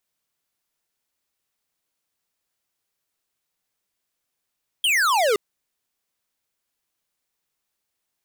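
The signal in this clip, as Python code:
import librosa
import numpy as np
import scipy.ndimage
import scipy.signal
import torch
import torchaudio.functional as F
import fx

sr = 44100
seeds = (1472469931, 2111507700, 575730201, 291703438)

y = fx.laser_zap(sr, level_db=-19, start_hz=3300.0, end_hz=390.0, length_s=0.52, wave='square')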